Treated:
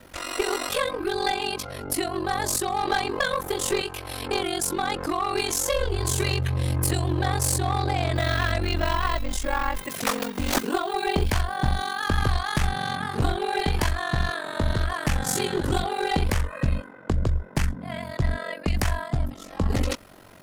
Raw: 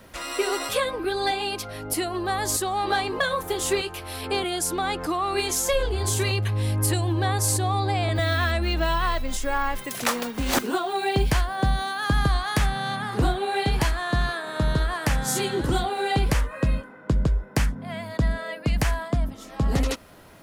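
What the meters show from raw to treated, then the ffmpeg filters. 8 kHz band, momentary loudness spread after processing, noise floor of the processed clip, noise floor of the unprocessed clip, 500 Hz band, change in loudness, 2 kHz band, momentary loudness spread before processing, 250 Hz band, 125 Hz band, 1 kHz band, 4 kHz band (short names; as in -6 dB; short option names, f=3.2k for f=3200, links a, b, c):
-0.5 dB, 4 LU, -43 dBFS, -43 dBFS, -1.0 dB, -1.0 dB, -0.5 dB, 5 LU, -1.0 dB, -1.0 dB, -0.5 dB, -0.5 dB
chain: -af "aeval=exprs='val(0)*sin(2*PI*23*n/s)':c=same,aeval=exprs='clip(val(0),-1,0.0708)':c=same,volume=3dB"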